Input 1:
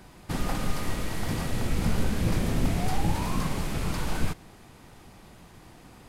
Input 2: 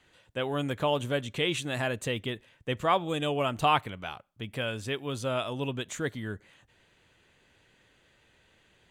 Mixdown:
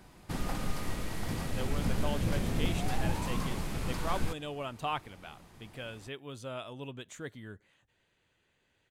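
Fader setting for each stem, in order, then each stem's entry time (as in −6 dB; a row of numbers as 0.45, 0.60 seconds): −5.5, −10.0 decibels; 0.00, 1.20 seconds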